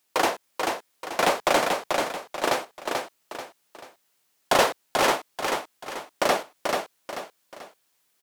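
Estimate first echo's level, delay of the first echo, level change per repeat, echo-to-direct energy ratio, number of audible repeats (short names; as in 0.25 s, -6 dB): -4.0 dB, 0.437 s, -8.5 dB, -3.5 dB, 3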